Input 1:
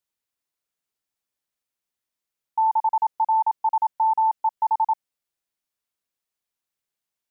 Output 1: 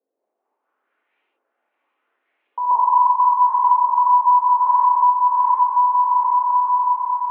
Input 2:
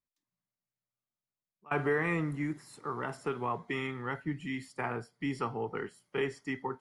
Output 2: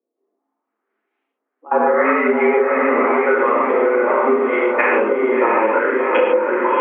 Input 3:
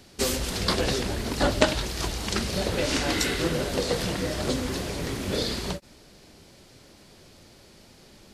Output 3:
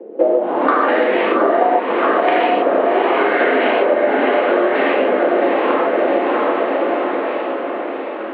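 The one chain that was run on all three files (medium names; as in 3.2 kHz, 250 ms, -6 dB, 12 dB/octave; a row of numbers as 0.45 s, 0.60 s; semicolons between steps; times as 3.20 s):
tremolo 4.4 Hz, depth 58%; LFO low-pass saw up 0.81 Hz 370–2600 Hz; mistuned SSB +100 Hz 160–3300 Hz; echo that smears into a reverb 711 ms, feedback 53%, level -4 dB; gated-style reverb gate 170 ms flat, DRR -5 dB; compression 6:1, threshold -29 dBFS; normalise loudness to -16 LUFS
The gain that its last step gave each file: +15.5 dB, +17.0 dB, +16.5 dB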